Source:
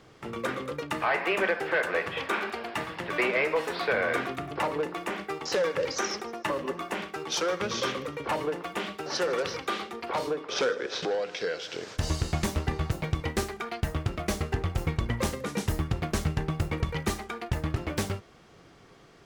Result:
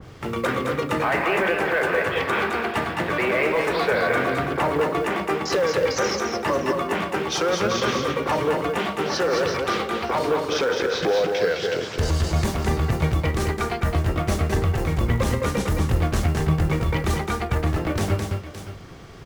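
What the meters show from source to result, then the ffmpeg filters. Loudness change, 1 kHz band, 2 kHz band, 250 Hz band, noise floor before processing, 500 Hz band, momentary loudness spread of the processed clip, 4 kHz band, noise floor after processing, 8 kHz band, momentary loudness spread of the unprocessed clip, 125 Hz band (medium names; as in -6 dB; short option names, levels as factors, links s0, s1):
+7.5 dB, +7.5 dB, +6.0 dB, +8.0 dB, -54 dBFS, +7.5 dB, 4 LU, +5.0 dB, -35 dBFS, +4.0 dB, 7 LU, +8.5 dB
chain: -filter_complex "[0:a]equalizer=f=83:t=o:w=0.88:g=4.5,acrossover=split=150|6700[s0][s1][s2];[s0]acompressor=mode=upward:threshold=0.00562:ratio=2.5[s3];[s3][s1][s2]amix=inputs=3:normalize=0,alimiter=limit=0.075:level=0:latency=1:release=10,acrusher=bits=7:mode=log:mix=0:aa=0.000001,asplit=2[s4][s5];[s5]aecho=0:1:213|568:0.596|0.211[s6];[s4][s6]amix=inputs=2:normalize=0,adynamicequalizer=threshold=0.00562:dfrequency=2300:dqfactor=0.7:tfrequency=2300:tqfactor=0.7:attack=5:release=100:ratio=0.375:range=2:mode=cutabove:tftype=highshelf,volume=2.66"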